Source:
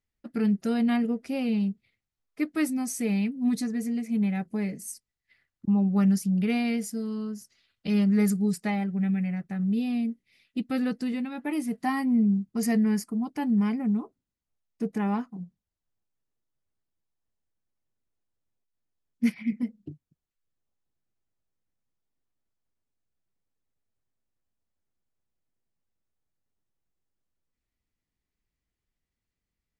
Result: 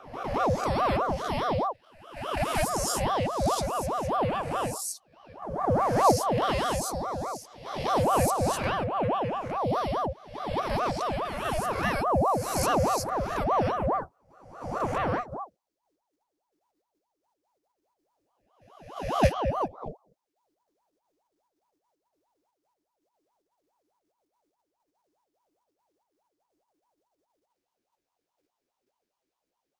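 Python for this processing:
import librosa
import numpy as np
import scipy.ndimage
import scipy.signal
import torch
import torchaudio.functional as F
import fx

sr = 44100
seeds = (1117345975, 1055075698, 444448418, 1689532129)

p1 = fx.spec_swells(x, sr, rise_s=0.92)
p2 = fx.level_steps(p1, sr, step_db=20)
p3 = p1 + F.gain(torch.from_numpy(p2), -1.5).numpy()
p4 = fx.peak_eq(p3, sr, hz=5300.0, db=5.0, octaves=0.68)
y = fx.ring_lfo(p4, sr, carrier_hz=640.0, swing_pct=55, hz=4.8)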